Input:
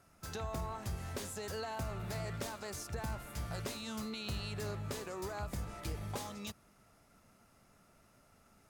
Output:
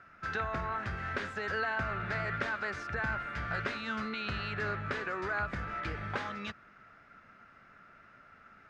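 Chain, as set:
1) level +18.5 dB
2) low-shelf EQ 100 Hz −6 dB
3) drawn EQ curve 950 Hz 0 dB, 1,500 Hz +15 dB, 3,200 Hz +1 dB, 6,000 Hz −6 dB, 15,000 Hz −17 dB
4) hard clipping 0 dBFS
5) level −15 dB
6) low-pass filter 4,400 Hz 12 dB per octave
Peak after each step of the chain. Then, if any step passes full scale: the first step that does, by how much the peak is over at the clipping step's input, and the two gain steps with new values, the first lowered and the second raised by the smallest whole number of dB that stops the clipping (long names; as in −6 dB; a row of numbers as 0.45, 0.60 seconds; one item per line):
−11.0, −10.5, −5.0, −5.0, −20.0, −20.0 dBFS
no step passes full scale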